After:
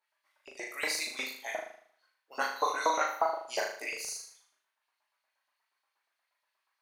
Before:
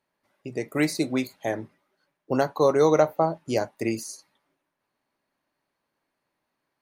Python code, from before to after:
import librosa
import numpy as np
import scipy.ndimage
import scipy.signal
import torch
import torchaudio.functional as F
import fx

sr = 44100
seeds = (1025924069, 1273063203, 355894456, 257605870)

y = fx.chorus_voices(x, sr, voices=6, hz=0.51, base_ms=19, depth_ms=3.3, mix_pct=60)
y = fx.filter_lfo_highpass(y, sr, shape='saw_up', hz=8.4, low_hz=730.0, high_hz=4500.0, q=1.6)
y = fx.room_flutter(y, sr, wall_m=6.6, rt60_s=0.56)